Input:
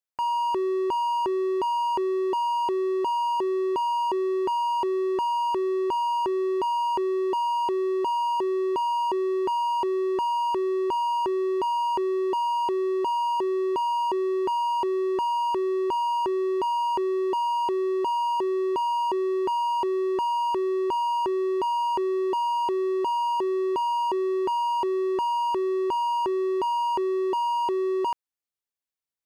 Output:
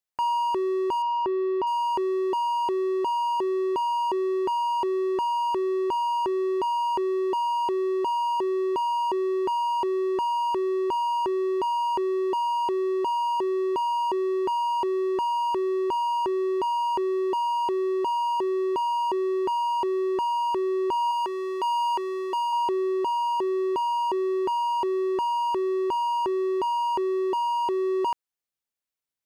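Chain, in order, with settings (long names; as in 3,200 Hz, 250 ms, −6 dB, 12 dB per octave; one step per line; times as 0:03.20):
0:21.11–0:22.53: high-pass filter 940 Hz 6 dB per octave
speech leveller within 4 dB 0.5 s
0:01.02–0:01.67: Gaussian smoothing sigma 1.9 samples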